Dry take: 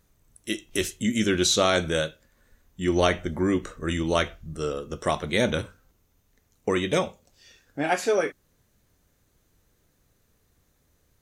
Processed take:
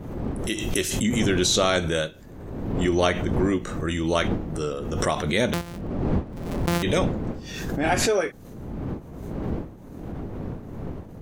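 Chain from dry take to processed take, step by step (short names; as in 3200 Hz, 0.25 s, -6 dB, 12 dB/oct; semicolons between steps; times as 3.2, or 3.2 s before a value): 5.53–6.83 sample sorter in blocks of 256 samples; wind noise 270 Hz -33 dBFS; backwards sustainer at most 39 dB/s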